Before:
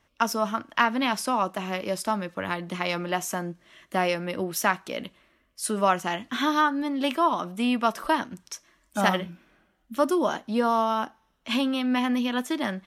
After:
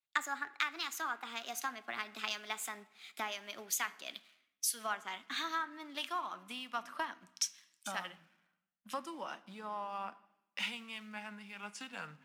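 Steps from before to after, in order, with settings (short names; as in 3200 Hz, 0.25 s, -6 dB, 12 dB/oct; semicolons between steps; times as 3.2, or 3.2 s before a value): speed glide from 130% -> 80%; bell 470 Hz -8.5 dB 1.9 oct; in parallel at -10 dB: companded quantiser 4-bit; on the sum: compressor 8:1, threshold -40 dBFS, peak gain reduction 23.5 dB; weighting filter A; on a send at -15 dB: reverb RT60 2.0 s, pre-delay 3 ms; on the sum: three-band expander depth 100%; gain +3.5 dB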